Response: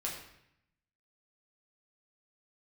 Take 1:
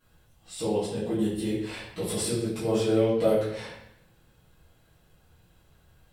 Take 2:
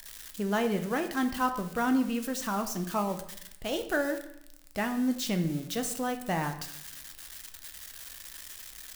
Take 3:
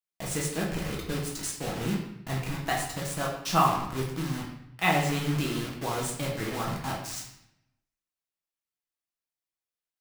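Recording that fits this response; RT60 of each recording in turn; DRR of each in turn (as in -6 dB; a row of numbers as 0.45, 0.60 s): 3; 0.75, 0.75, 0.75 s; -13.0, 6.0, -3.5 dB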